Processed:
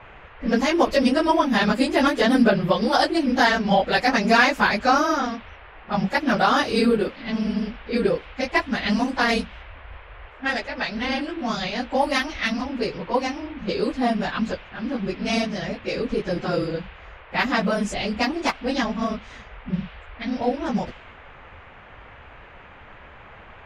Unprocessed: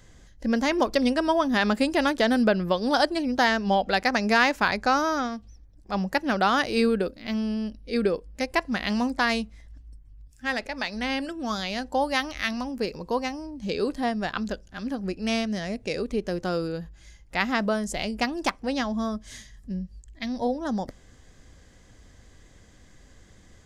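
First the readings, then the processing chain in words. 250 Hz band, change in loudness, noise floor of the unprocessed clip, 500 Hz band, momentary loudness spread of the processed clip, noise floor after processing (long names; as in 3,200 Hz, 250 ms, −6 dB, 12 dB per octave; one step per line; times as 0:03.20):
+3.5 dB, +3.5 dB, −53 dBFS, +3.5 dB, 11 LU, −45 dBFS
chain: random phases in long frames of 50 ms
noise in a band 420–3,000 Hz −48 dBFS
low-pass that shuts in the quiet parts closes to 1,600 Hz, open at −21 dBFS
level +3.5 dB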